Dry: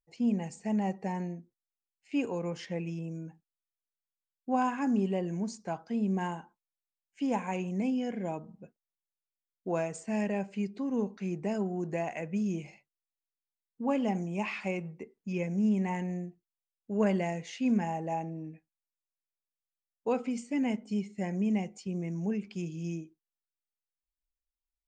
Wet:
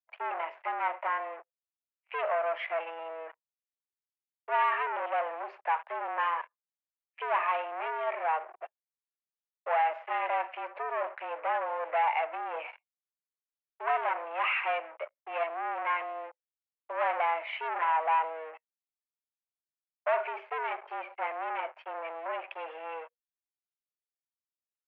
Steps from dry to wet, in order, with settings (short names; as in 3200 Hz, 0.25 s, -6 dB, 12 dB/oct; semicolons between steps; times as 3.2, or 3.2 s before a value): sample leveller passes 5; mistuned SSB +160 Hz 470–2400 Hz; gain -4.5 dB